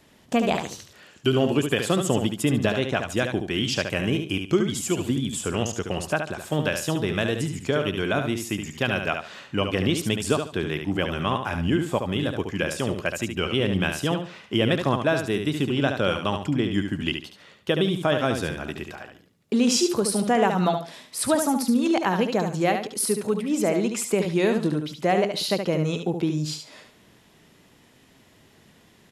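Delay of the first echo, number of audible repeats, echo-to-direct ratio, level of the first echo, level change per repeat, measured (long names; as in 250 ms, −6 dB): 72 ms, 3, −6.0 dB, −6.5 dB, −12.0 dB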